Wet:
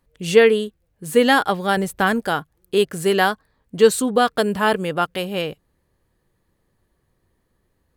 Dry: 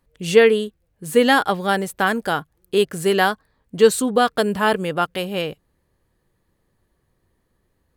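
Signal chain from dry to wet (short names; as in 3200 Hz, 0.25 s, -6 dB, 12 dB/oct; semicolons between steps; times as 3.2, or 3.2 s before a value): 1.77–2.2 low shelf 150 Hz +10 dB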